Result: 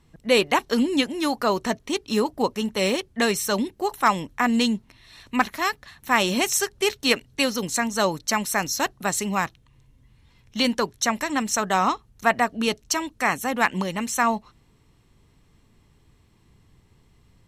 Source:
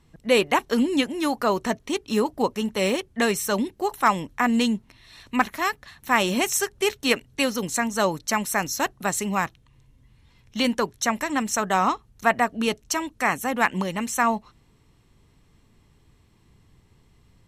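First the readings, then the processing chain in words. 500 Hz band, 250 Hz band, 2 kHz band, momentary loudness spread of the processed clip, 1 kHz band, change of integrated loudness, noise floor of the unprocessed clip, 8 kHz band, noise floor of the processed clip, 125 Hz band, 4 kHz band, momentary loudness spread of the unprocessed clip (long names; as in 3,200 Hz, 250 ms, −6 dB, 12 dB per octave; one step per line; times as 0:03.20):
0.0 dB, 0.0 dB, +0.5 dB, 5 LU, 0.0 dB, +0.5 dB, −60 dBFS, +1.5 dB, −60 dBFS, 0.0 dB, +3.0 dB, 6 LU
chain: dynamic equaliser 4,500 Hz, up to +5 dB, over −43 dBFS, Q 1.6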